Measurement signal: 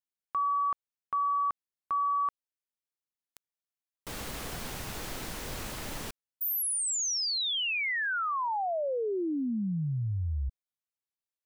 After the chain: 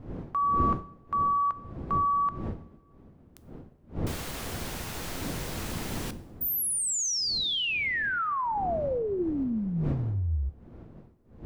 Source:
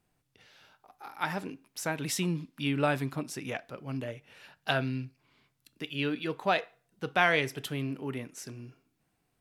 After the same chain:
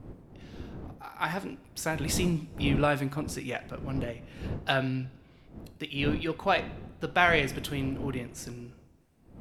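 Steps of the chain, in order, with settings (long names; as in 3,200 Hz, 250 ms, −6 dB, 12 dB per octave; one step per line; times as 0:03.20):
wind on the microphone 250 Hz −41 dBFS
coupled-rooms reverb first 0.6 s, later 1.9 s, from −18 dB, DRR 14 dB
level +1.5 dB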